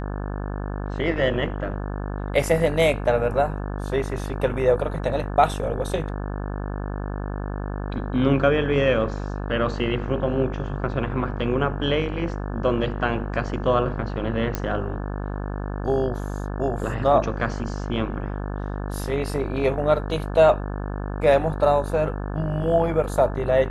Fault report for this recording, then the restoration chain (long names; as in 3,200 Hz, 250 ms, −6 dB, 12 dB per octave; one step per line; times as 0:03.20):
mains buzz 50 Hz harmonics 35 −29 dBFS
0:14.55: click −10 dBFS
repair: click removal
hum removal 50 Hz, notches 35